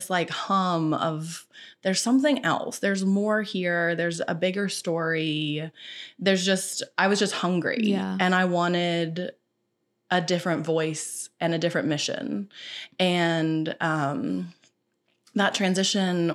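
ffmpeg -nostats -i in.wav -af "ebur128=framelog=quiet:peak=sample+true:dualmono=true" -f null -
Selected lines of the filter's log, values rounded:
Integrated loudness:
  I:         -22.2 LUFS
  Threshold: -32.6 LUFS
Loudness range:
  LRA:         3.1 LU
  Threshold: -42.8 LUFS
  LRA low:   -24.4 LUFS
  LRA high:  -21.4 LUFS
Sample peak:
  Peak:       -6.7 dBFS
True peak:
  Peak:       -6.7 dBFS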